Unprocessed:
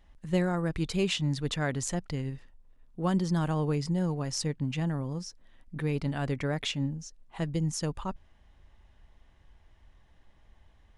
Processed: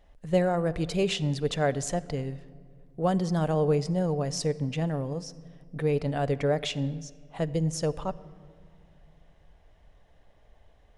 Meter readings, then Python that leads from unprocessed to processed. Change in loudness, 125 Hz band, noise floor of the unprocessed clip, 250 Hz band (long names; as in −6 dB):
+2.5 dB, +1.0 dB, −61 dBFS, +1.0 dB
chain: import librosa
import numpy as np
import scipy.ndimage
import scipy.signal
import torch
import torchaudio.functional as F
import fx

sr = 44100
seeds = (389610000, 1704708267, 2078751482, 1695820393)

y = fx.band_shelf(x, sr, hz=560.0, db=8.5, octaves=1.0)
y = fx.room_shoebox(y, sr, seeds[0], volume_m3=3700.0, walls='mixed', distance_m=0.38)